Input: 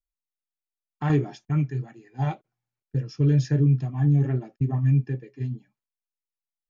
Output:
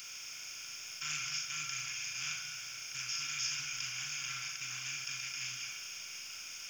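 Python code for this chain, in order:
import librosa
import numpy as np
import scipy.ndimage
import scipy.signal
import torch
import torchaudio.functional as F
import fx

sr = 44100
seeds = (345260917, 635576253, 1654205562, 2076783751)

p1 = fx.bin_compress(x, sr, power=0.2)
p2 = scipy.signal.sosfilt(scipy.signal.cheby2(4, 40, 970.0, 'highpass', fs=sr, output='sos'), p1)
p3 = p2 + 0.41 * np.pad(p2, (int(2.8 * sr / 1000.0), 0))[:len(p2)]
p4 = 10.0 ** (-39.5 / 20.0) * np.tanh(p3 / 10.0 ** (-39.5 / 20.0))
p5 = p3 + (p4 * 10.0 ** (-8.0 / 20.0))
p6 = fx.fixed_phaser(p5, sr, hz=2700.0, stages=8)
p7 = np.where(np.abs(p6) >= 10.0 ** (-52.0 / 20.0), p6, 0.0)
p8 = p7 + fx.room_flutter(p7, sr, wall_m=6.8, rt60_s=0.32, dry=0)
p9 = fx.rev_schroeder(p8, sr, rt60_s=2.9, comb_ms=26, drr_db=5.5)
p10 = fx.doppler_dist(p9, sr, depth_ms=0.36)
y = p10 * 10.0 ** (1.0 / 20.0)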